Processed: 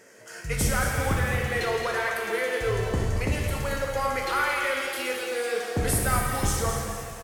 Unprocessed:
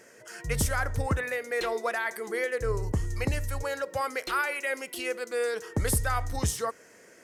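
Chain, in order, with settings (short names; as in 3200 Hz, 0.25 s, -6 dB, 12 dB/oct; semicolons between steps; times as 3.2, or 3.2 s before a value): feedback echo 0.223 s, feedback 44%, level -8.5 dB; shimmer reverb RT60 1.6 s, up +7 st, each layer -8 dB, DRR 0.5 dB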